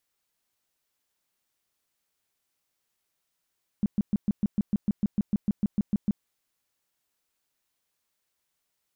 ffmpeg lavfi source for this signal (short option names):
-f lavfi -i "aevalsrc='0.106*sin(2*PI*206*mod(t,0.15))*lt(mod(t,0.15),6/206)':d=2.4:s=44100"